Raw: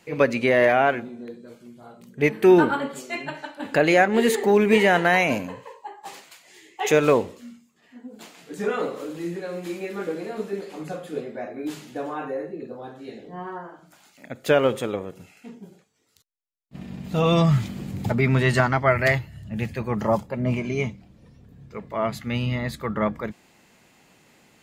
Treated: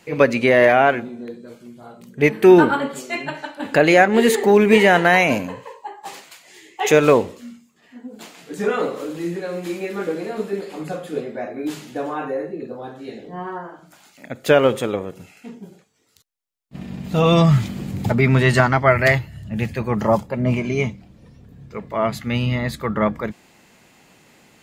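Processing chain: 10.42–10.93 s: band-stop 6 kHz, Q 10; trim +4.5 dB

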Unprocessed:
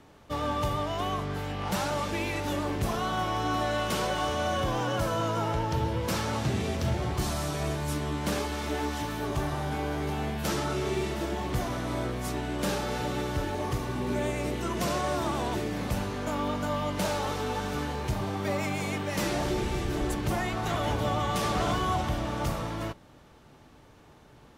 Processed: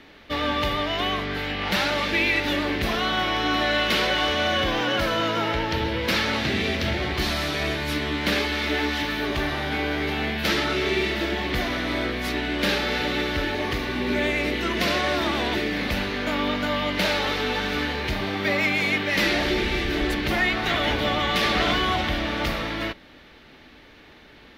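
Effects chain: graphic EQ 125/250/1000/2000/4000/8000 Hz -10/+3/-5/+10/+9/-12 dB; trim +5 dB

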